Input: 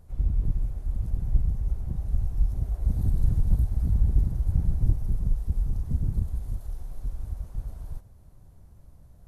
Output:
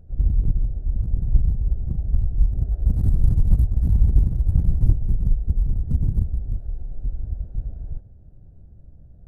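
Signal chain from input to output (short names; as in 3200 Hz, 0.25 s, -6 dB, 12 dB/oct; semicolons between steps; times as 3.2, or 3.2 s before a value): Wiener smoothing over 41 samples; gain +5.5 dB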